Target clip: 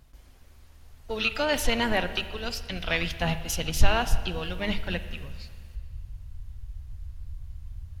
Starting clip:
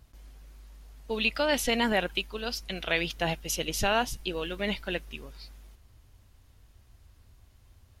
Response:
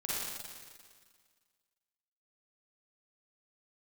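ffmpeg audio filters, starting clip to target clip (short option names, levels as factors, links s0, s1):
-filter_complex "[0:a]asubboost=boost=11.5:cutoff=98,asplit=3[s0][s1][s2];[s1]asetrate=22050,aresample=44100,atempo=2,volume=0.158[s3];[s2]asetrate=66075,aresample=44100,atempo=0.66742,volume=0.158[s4];[s0][s3][s4]amix=inputs=3:normalize=0,bandreject=f=50:t=h:w=6,bandreject=f=100:t=h:w=6,bandreject=f=150:t=h:w=6,bandreject=f=200:t=h:w=6,asplit=2[s5][s6];[1:a]atrim=start_sample=2205,lowpass=4000[s7];[s6][s7]afir=irnorm=-1:irlink=0,volume=0.188[s8];[s5][s8]amix=inputs=2:normalize=0"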